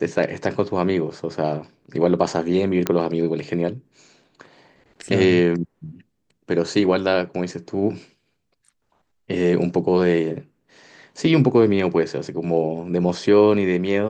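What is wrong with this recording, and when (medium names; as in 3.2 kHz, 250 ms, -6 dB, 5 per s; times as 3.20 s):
2.87 s: pop -5 dBFS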